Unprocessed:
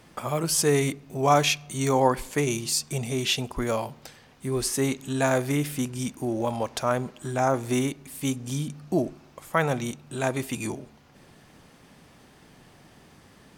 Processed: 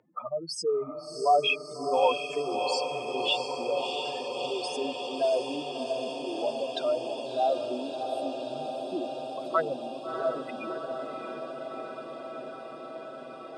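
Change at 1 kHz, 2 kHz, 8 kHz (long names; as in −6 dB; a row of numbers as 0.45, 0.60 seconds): −1.0, −5.0, −16.0 decibels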